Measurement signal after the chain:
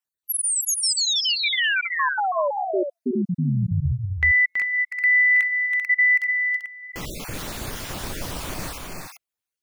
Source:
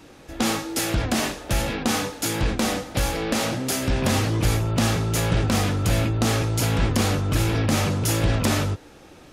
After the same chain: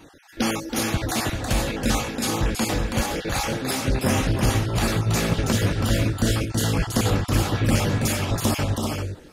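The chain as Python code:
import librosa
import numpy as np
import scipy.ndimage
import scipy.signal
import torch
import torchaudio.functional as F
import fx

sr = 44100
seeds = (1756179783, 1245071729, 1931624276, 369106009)

y = fx.spec_dropout(x, sr, seeds[0], share_pct=39)
y = fx.echo_multitap(y, sr, ms=(326, 390), db=(-5.5, -6.0))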